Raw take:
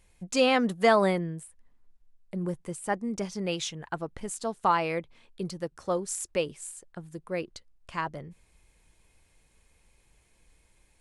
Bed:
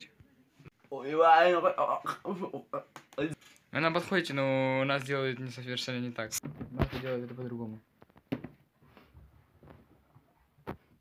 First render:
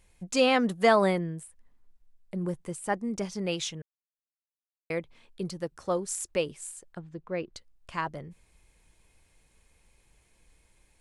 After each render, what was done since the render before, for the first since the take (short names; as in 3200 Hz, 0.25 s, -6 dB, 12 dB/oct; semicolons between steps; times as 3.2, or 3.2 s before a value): 3.82–4.9 mute; 6.99–7.54 air absorption 180 m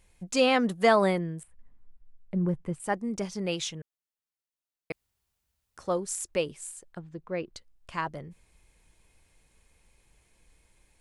1.43–2.8 tone controls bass +7 dB, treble -15 dB; 4.92–5.77 room tone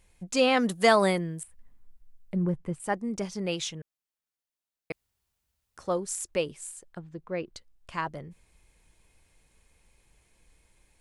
0.57–2.44 high shelf 3500 Hz +10 dB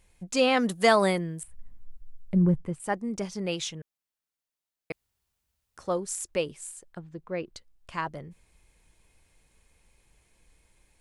1.42–2.66 low shelf 210 Hz +10.5 dB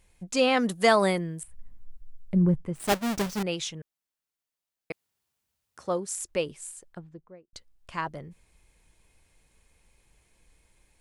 2.75–3.43 half-waves squared off; 4.91–6.14 HPF 180 Hz -> 61 Hz; 6.84–7.53 studio fade out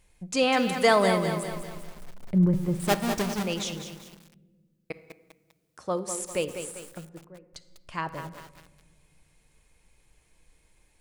shoebox room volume 1700 m³, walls mixed, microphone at 0.48 m; lo-fi delay 0.199 s, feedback 55%, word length 7-bit, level -8 dB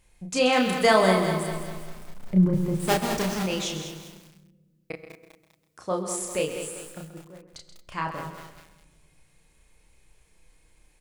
doubler 32 ms -3 dB; echo 0.131 s -11 dB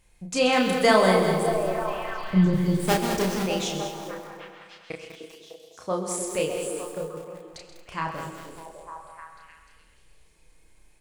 delay with a stepping band-pass 0.302 s, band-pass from 340 Hz, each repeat 0.7 oct, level -3 dB; Schroeder reverb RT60 1.4 s, combs from 30 ms, DRR 13 dB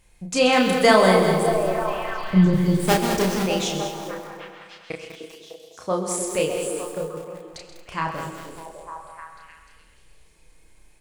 gain +3.5 dB; limiter -3 dBFS, peak gain reduction 1 dB